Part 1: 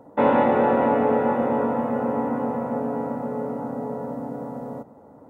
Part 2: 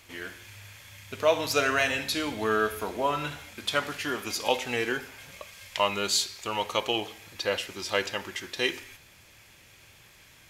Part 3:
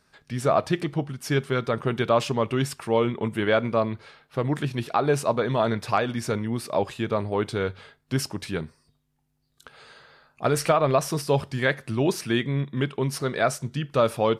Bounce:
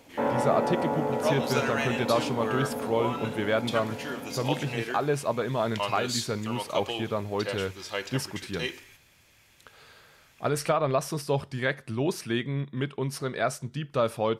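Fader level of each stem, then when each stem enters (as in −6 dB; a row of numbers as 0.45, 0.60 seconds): −8.5, −5.5, −4.5 decibels; 0.00, 0.00, 0.00 seconds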